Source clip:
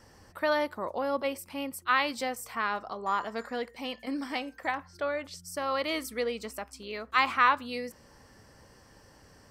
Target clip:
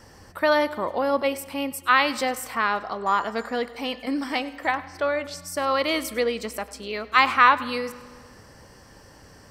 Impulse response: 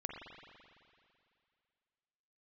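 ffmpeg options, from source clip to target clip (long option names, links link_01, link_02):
-filter_complex "[0:a]asplit=2[link_01][link_02];[1:a]atrim=start_sample=2205,asetrate=66150,aresample=44100,adelay=100[link_03];[link_02][link_03]afir=irnorm=-1:irlink=0,volume=-12.5dB[link_04];[link_01][link_04]amix=inputs=2:normalize=0,volume=7dB"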